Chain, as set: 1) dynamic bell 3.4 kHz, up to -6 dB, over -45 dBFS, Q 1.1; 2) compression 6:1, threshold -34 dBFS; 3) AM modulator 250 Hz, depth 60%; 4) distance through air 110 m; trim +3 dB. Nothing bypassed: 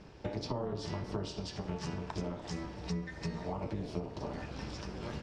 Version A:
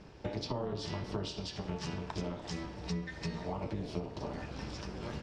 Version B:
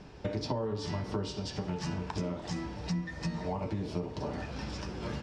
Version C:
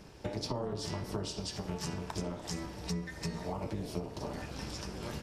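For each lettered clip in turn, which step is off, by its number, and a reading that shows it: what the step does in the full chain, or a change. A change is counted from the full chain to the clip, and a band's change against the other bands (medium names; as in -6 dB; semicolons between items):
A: 1, 4 kHz band +2.5 dB; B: 3, loudness change +3.5 LU; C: 4, 8 kHz band +7.5 dB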